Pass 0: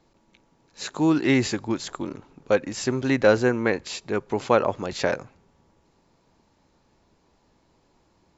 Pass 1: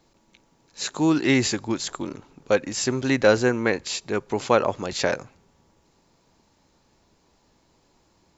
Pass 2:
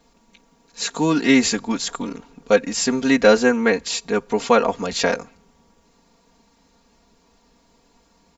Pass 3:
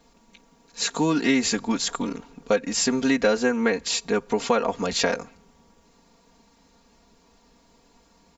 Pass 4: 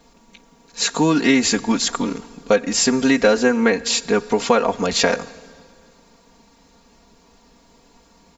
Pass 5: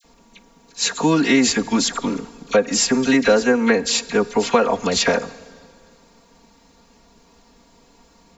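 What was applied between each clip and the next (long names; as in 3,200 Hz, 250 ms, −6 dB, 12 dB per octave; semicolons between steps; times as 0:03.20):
high-shelf EQ 3,900 Hz +8 dB
comb filter 4.3 ms, depth 95%; level +1.5 dB
downward compressor 3 to 1, threshold −19 dBFS, peak gain reduction 9 dB
dense smooth reverb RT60 2.2 s, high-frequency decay 0.95×, DRR 19 dB; level +5.5 dB
all-pass dispersion lows, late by 44 ms, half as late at 1,700 Hz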